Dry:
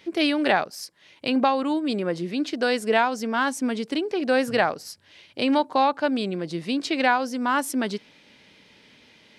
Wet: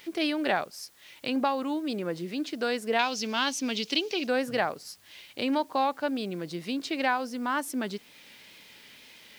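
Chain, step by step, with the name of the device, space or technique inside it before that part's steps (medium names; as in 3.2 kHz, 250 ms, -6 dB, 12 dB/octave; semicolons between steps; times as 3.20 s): noise-reduction cassette on a plain deck (tape noise reduction on one side only encoder only; wow and flutter; white noise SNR 30 dB); 2.99–4.27 s: high-order bell 3.9 kHz +12.5 dB; trim -6 dB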